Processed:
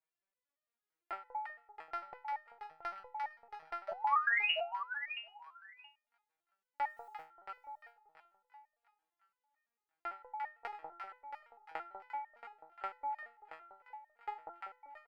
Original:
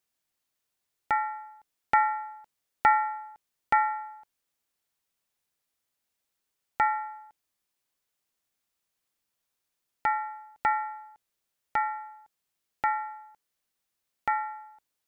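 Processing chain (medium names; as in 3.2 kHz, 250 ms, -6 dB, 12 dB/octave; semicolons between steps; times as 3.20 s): three-band isolator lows -14 dB, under 260 Hz, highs -15 dB, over 2.4 kHz; transient shaper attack +6 dB, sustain -12 dB; compression 12:1, threshold -31 dBFS, peak gain reduction 19.5 dB; two-band feedback delay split 920 Hz, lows 194 ms, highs 348 ms, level -4 dB; 3.88–4.51 s: painted sound rise 610–3000 Hz -24 dBFS; 6.82–7.22 s: word length cut 12-bit, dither triangular; on a send: feedback delay 676 ms, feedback 15%, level -9.5 dB; on the sum: resonator arpeggio 8.9 Hz 160–610 Hz; trim +7 dB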